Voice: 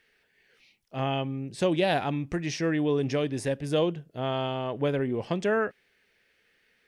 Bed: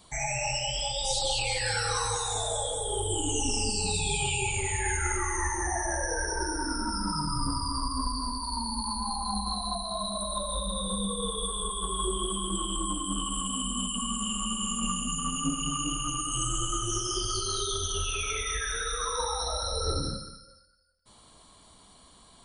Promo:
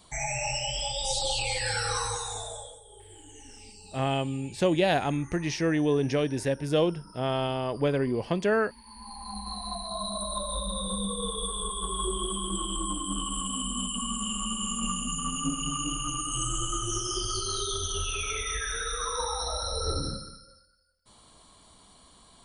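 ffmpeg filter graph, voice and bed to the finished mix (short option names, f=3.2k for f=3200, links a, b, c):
-filter_complex "[0:a]adelay=3000,volume=1dB[a];[1:a]volume=19.5dB,afade=t=out:st=1.96:d=0.85:silence=0.1,afade=t=in:st=8.83:d=1.26:silence=0.1[b];[a][b]amix=inputs=2:normalize=0"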